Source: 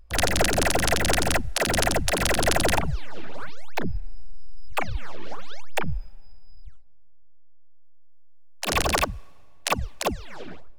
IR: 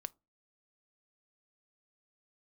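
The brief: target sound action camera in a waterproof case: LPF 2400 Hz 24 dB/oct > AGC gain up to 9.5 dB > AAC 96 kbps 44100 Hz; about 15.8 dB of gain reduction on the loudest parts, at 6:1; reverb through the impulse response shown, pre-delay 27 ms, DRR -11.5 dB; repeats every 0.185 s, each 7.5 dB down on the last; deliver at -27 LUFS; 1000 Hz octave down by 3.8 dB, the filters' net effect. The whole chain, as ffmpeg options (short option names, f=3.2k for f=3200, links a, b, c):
-filter_complex "[0:a]equalizer=f=1k:t=o:g=-5.5,acompressor=threshold=-36dB:ratio=6,aecho=1:1:185|370|555|740|925:0.422|0.177|0.0744|0.0312|0.0131,asplit=2[a][b];[1:a]atrim=start_sample=2205,adelay=27[c];[b][c]afir=irnorm=-1:irlink=0,volume=15dB[d];[a][d]amix=inputs=2:normalize=0,lowpass=f=2.4k:w=0.5412,lowpass=f=2.4k:w=1.3066,dynaudnorm=m=9.5dB,volume=4.5dB" -ar 44100 -c:a aac -b:a 96k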